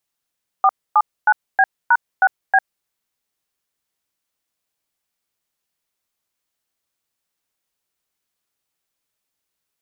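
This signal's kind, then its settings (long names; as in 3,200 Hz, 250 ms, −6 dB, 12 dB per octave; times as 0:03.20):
touch tones "479B#6B", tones 52 ms, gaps 264 ms, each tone −12 dBFS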